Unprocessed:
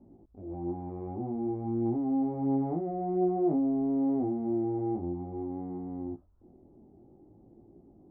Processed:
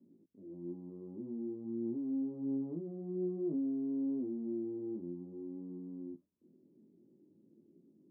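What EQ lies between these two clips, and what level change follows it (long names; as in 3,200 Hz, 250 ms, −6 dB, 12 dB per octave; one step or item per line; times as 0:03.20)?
moving average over 58 samples
Chebyshev high-pass filter 180 Hz, order 3
−4.5 dB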